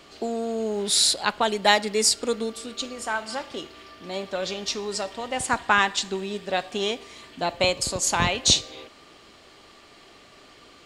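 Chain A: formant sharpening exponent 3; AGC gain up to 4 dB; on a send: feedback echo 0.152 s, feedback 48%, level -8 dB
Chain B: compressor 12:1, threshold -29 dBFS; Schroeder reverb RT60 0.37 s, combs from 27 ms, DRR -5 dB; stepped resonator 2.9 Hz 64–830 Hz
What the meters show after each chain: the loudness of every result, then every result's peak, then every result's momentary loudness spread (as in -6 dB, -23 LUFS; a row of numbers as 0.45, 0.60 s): -21.0, -39.0 LUFS; -2.5, -20.5 dBFS; 15, 19 LU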